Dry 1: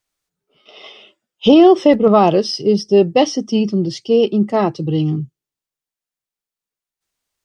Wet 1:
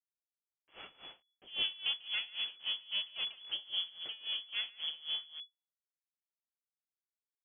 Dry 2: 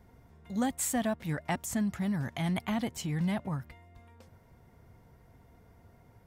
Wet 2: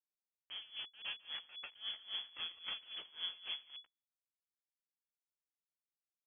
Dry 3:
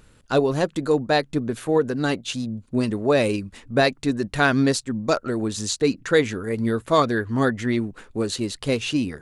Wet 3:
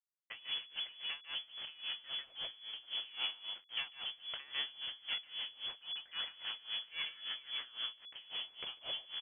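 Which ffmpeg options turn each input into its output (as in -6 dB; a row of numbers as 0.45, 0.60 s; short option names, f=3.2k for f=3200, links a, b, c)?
-af "acompressor=threshold=-32dB:ratio=3,aresample=11025,acrusher=bits=4:dc=4:mix=0:aa=0.000001,aresample=44100,aecho=1:1:146:0.668,lowpass=f=2.9k:t=q:w=0.5098,lowpass=f=2.9k:t=q:w=0.6013,lowpass=f=2.9k:t=q:w=0.9,lowpass=f=2.9k:t=q:w=2.563,afreqshift=-3400,aeval=exprs='val(0)*pow(10,-21*(0.5-0.5*cos(2*PI*3.7*n/s))/20)':c=same,volume=-4dB"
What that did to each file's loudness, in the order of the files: -22.0, -11.0, -18.0 LU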